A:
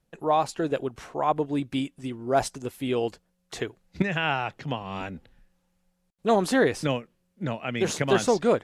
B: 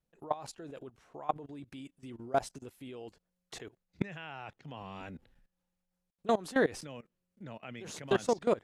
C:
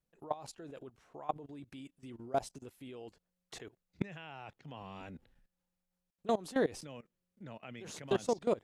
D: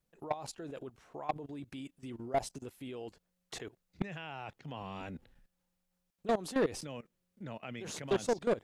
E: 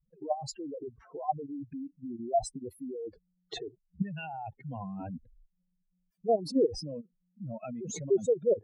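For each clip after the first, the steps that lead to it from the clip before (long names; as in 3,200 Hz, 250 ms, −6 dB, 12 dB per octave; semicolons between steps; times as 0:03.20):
output level in coarse steps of 20 dB; level −4.5 dB
dynamic equaliser 1,600 Hz, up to −6 dB, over −49 dBFS, Q 1.4; level −2.5 dB
soft clipping −27.5 dBFS, distortion −12 dB; level +4.5 dB
expanding power law on the bin magnitudes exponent 3.8; level +5.5 dB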